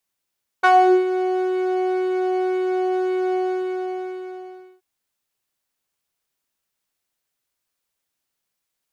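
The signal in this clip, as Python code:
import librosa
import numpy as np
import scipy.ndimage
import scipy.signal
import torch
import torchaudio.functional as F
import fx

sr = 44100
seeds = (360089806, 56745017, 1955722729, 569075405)

y = fx.sub_patch_pwm(sr, seeds[0], note=78, wave2='saw', interval_st=19, detune_cents=6, level2_db=-5.0, sub_db=-2.0, noise_db=-26.0, kind='bandpass', cutoff_hz=160.0, q=2.2, env_oct=3.0, env_decay_s=0.41, env_sustain_pct=15, attack_ms=17.0, decay_s=0.07, sustain_db=-3.5, release_s=1.47, note_s=2.71, lfo_hz=1.9, width_pct=27, width_swing_pct=15)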